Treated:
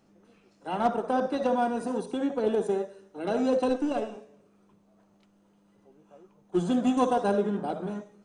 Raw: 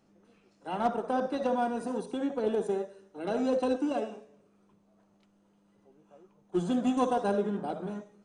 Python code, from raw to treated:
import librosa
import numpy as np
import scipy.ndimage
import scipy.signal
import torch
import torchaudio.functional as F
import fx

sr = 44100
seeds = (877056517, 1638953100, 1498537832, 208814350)

y = fx.halfwave_gain(x, sr, db=-3.0, at=(3.69, 4.16))
y = F.gain(torch.from_numpy(y), 3.0).numpy()